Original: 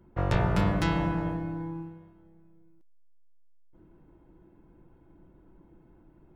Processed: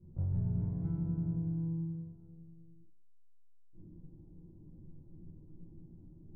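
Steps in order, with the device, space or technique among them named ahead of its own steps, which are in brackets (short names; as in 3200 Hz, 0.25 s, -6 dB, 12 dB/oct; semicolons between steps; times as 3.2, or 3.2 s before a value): television next door (compressor 4:1, threshold -39 dBFS, peak gain reduction 17 dB; LPF 250 Hz 12 dB/oct; reverb RT60 0.40 s, pre-delay 14 ms, DRR -7 dB); gain -3.5 dB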